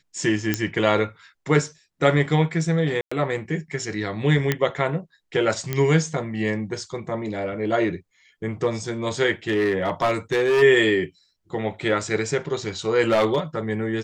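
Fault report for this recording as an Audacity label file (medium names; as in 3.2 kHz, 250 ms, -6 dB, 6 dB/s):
0.540000	0.540000	pop -6 dBFS
3.010000	3.120000	dropout 105 ms
4.520000	4.520000	pop -6 dBFS
5.730000	5.730000	pop -10 dBFS
9.490000	10.630000	clipped -16 dBFS
13.080000	13.390000	clipped -14 dBFS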